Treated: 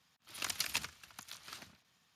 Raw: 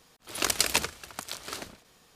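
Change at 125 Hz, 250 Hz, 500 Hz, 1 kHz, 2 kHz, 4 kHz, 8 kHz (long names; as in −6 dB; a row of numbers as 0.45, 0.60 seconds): −12.0, −16.0, −20.0, −13.0, −10.0, −10.0, −12.5 decibels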